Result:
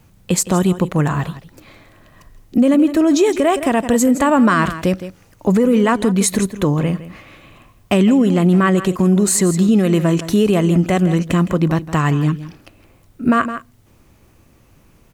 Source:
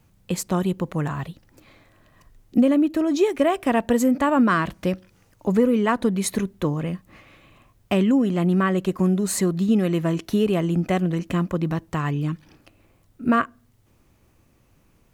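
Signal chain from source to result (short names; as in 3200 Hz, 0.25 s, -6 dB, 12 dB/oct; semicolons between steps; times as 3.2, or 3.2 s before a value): dynamic EQ 7800 Hz, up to +7 dB, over -52 dBFS, Q 1.4; on a send: echo 0.163 s -15 dB; on the sum: maximiser +13.5 dB; gain -5 dB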